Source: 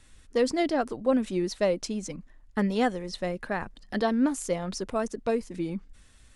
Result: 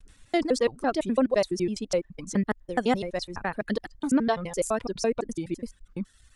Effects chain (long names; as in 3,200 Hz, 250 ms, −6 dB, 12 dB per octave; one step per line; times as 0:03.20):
slices reordered back to front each 84 ms, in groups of 4
reverb reduction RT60 1.1 s
downward expander −57 dBFS
level +2 dB